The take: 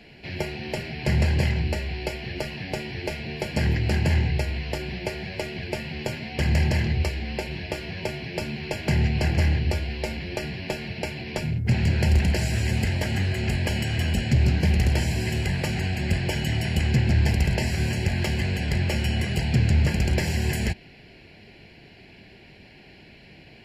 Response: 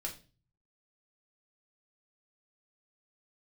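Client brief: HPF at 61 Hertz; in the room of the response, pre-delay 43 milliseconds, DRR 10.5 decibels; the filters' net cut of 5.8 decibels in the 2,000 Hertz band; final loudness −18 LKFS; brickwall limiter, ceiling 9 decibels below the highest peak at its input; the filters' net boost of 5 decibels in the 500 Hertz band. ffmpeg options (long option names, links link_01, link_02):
-filter_complex "[0:a]highpass=61,equalizer=frequency=500:width_type=o:gain=7,equalizer=frequency=2000:width_type=o:gain=-7.5,alimiter=limit=-17.5dB:level=0:latency=1,asplit=2[link_01][link_02];[1:a]atrim=start_sample=2205,adelay=43[link_03];[link_02][link_03]afir=irnorm=-1:irlink=0,volume=-10.5dB[link_04];[link_01][link_04]amix=inputs=2:normalize=0,volume=9.5dB"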